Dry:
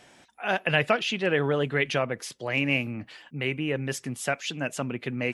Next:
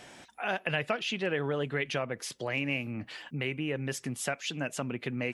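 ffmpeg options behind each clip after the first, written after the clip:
ffmpeg -i in.wav -af "acompressor=threshold=-40dB:ratio=2,volume=4dB" out.wav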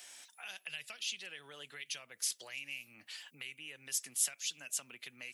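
ffmpeg -i in.wav -filter_complex "[0:a]aderivative,acrossover=split=190|3000[link_01][link_02][link_03];[link_02]acompressor=threshold=-56dB:ratio=6[link_04];[link_01][link_04][link_03]amix=inputs=3:normalize=0,volume=5.5dB" out.wav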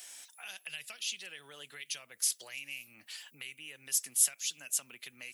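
ffmpeg -i in.wav -af "highshelf=frequency=8500:gain=11" out.wav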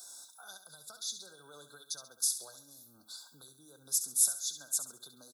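ffmpeg -i in.wav -filter_complex "[0:a]afftfilt=real='re*(1-between(b*sr/4096,1600,3400))':imag='im*(1-between(b*sr/4096,1600,3400))':win_size=4096:overlap=0.75,asplit=2[link_01][link_02];[link_02]aecho=0:1:68|136|204|272:0.299|0.11|0.0409|0.0151[link_03];[link_01][link_03]amix=inputs=2:normalize=0" out.wav

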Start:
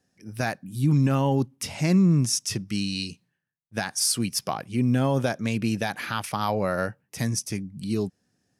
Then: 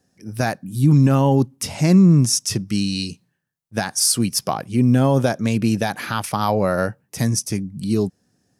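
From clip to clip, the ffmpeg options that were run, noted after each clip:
ffmpeg -i in.wav -af "equalizer=frequency=2400:width=0.83:gain=-5,volume=7dB" out.wav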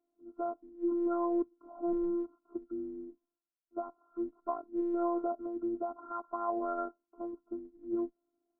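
ffmpeg -i in.wav -af "afftfilt=real='re*between(b*sr/4096,170,1400)':imag='im*between(b*sr/4096,170,1400)':win_size=4096:overlap=0.75,afftfilt=real='hypot(re,im)*cos(PI*b)':imag='0':win_size=512:overlap=0.75,volume=-9dB" out.wav

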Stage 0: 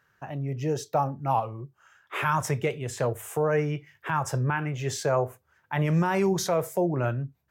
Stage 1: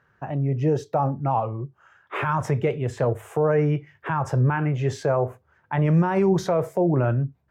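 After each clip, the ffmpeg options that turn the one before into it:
ffmpeg -i in.wav -af "alimiter=limit=-19dB:level=0:latency=1:release=45,lowpass=frequency=1100:poles=1,volume=7.5dB" out.wav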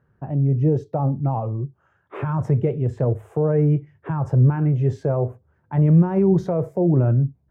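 ffmpeg -i in.wav -af "tiltshelf=frequency=730:gain=10,volume=-4dB" out.wav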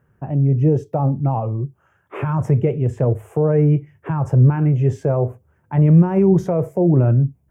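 ffmpeg -i in.wav -af "aexciter=amount=1.4:drive=2.3:freq=2200,volume=3dB" out.wav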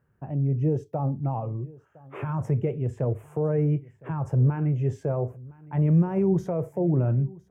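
ffmpeg -i in.wav -af "aecho=1:1:1011:0.075,volume=-8.5dB" out.wav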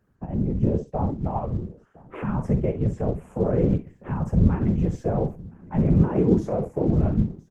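ffmpeg -i in.wav -af "aecho=1:1:47|63:0.251|0.188,afftfilt=real='hypot(re,im)*cos(2*PI*random(0))':imag='hypot(re,im)*sin(2*PI*random(1))':win_size=512:overlap=0.75,volume=8dB" -ar 48000 -c:a libopus -b:a 16k out.opus

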